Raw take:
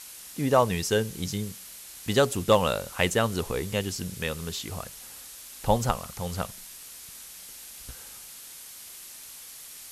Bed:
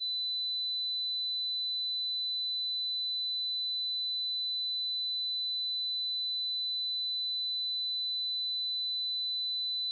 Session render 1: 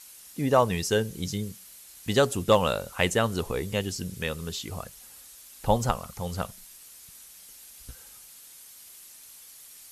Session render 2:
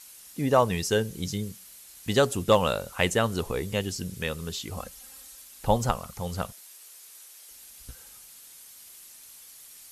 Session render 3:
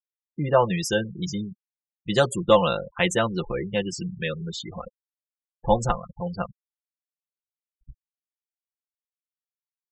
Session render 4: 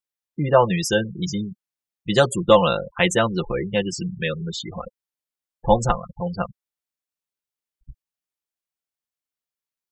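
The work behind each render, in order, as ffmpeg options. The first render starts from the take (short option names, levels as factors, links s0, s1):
-af "afftdn=nr=7:nf=-45"
-filter_complex "[0:a]asettb=1/sr,asplit=3[s0][s1][s2];[s0]atrim=end=4.774[s3];[s1]atrim=start=4.77:end=5.44,asetpts=PTS-STARTPTS,afade=t=in:d=0.004:c=qsin,afade=t=out:st=0.666:d=0.004:c=qsin,aecho=1:1:3.8:0.65,atrim=end_sample=29547[s4];[s2]atrim=start=5.436[s5];[s3][s4]acrossfade=d=0.004:c1=hsin:c2=qsin[s6];[s6][s5]acrossfade=d=0.004:c1=qsin:c2=hsin,asettb=1/sr,asplit=3[s7][s8][s9];[s7]atrim=end=6.524[s10];[s8]atrim=start=6.52:end=7.51,asetpts=PTS-STARTPTS,afade=t=in:d=0.004:c=qsin,afade=t=out:st=0.986:d=0.004:c=qsin,highpass=f=330:w=0.5412,highpass=f=330:w=1.3066[s11];[s9]atrim=start=7.506[s12];[s10][s11]acrossfade=d=0.004:c1=hsin:c2=qsin[s13];[s13][s12]acrossfade=d=0.004:c1=qsin:c2=hsin"
-af "afftfilt=real='re*gte(hypot(re,im),0.0282)':imag='im*gte(hypot(re,im),0.0282)':win_size=1024:overlap=0.75,aecho=1:1:5.8:0.85"
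-af "volume=1.5,alimiter=limit=0.794:level=0:latency=1"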